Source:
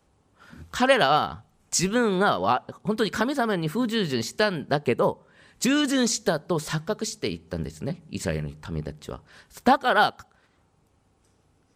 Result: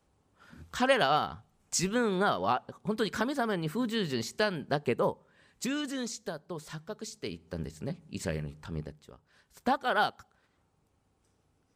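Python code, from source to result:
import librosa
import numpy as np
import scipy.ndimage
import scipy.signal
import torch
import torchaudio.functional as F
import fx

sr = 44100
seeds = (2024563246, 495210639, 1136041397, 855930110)

y = fx.gain(x, sr, db=fx.line((5.09, -6.0), (6.15, -14.0), (6.75, -14.0), (7.63, -6.0), (8.8, -6.0), (9.11, -17.0), (9.86, -7.5)))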